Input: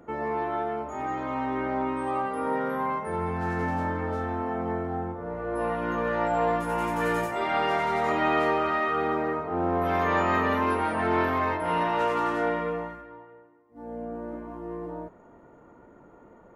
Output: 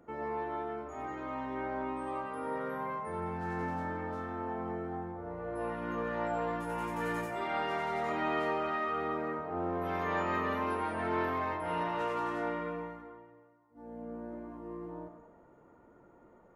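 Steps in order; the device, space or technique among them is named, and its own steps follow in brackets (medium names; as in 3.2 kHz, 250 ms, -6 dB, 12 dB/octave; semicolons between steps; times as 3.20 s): compressed reverb return (on a send at -6 dB: reverberation RT60 0.90 s, pre-delay 82 ms + compression, threshold -27 dBFS, peak gain reduction 8 dB); on the sum: trim -8.5 dB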